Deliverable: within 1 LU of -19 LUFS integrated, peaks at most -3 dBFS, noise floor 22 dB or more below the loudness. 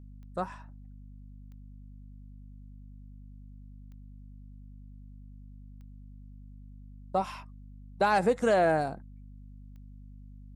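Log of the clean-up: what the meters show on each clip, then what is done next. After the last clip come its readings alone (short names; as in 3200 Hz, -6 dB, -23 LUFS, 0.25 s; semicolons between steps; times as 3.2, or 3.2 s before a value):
clicks 5; hum 50 Hz; harmonics up to 250 Hz; hum level -45 dBFS; loudness -28.5 LUFS; peak -15.0 dBFS; loudness target -19.0 LUFS
-> de-click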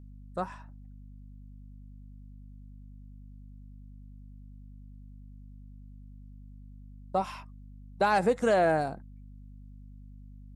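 clicks 0; hum 50 Hz; harmonics up to 250 Hz; hum level -45 dBFS
-> notches 50/100/150/200/250 Hz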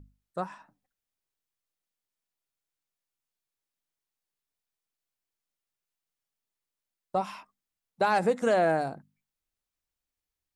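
hum none; loudness -28.5 LUFS; peak -14.5 dBFS; loudness target -19.0 LUFS
-> gain +9.5 dB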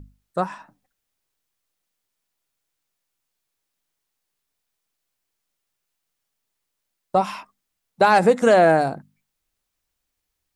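loudness -19.0 LUFS; peak -5.0 dBFS; noise floor -80 dBFS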